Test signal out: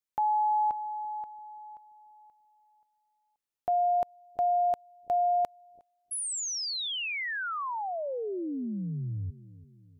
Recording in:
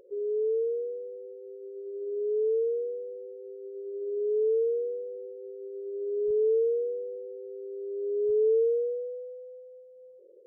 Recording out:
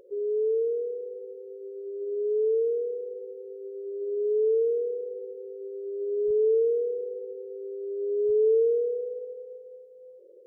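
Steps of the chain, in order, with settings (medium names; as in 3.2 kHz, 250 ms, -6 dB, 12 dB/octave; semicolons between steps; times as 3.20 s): bucket-brigade echo 338 ms, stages 1024, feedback 48%, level -17.5 dB; trim +2 dB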